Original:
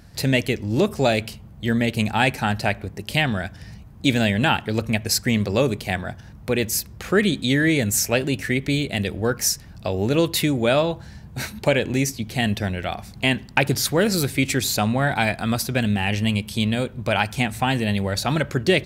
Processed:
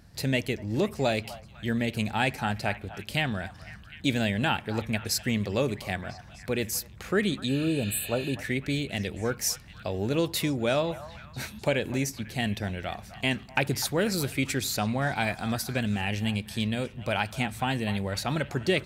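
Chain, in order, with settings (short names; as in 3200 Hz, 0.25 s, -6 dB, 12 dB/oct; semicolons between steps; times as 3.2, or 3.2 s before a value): delay with a stepping band-pass 0.25 s, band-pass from 960 Hz, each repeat 0.7 oct, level -11.5 dB; spectral repair 7.51–8.31, 1500–7600 Hz after; gain -7 dB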